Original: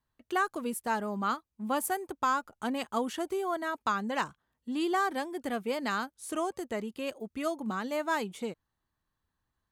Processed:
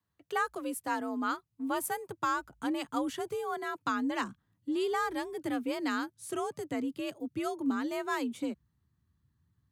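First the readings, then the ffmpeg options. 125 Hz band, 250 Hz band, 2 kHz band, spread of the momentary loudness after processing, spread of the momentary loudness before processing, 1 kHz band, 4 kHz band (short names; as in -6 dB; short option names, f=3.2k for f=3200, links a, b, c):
-6.0 dB, +1.0 dB, -2.0 dB, 5 LU, 7 LU, -3.0 dB, -2.0 dB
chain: -af "asubboost=boost=5:cutoff=210,afreqshift=53,volume=-2dB"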